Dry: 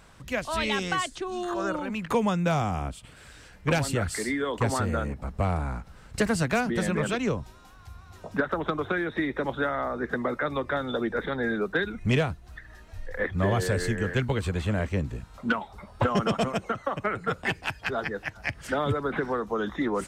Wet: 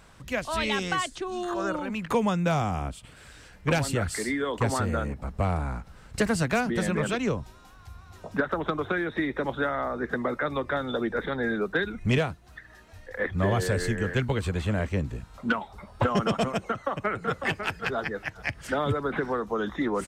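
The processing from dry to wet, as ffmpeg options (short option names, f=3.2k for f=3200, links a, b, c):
-filter_complex "[0:a]asettb=1/sr,asplit=3[a][b][c];[a]atrim=end=12.184[d];[b]atrim=start=12.18:end=13.26,asetpts=PTS-STARTPTS,afade=t=in:d=0.004:c=qsin,afade=t=out:st=1.076:d=0.004:c=qsin,highpass=f=130:p=1[e];[c]atrim=start=13.256[f];[d][e]acrossfade=d=0.004:c1=hsin:c2=qsin[g];[g][f]acrossfade=d=0.004:c1=qsin:c2=hsin,asplit=2[h][i];[i]afade=t=in:st=16.67:d=0.01,afade=t=out:st=17.39:d=0.01,aecho=0:1:550|1100:0.421697|0.0632545[j];[h][j]amix=inputs=2:normalize=0"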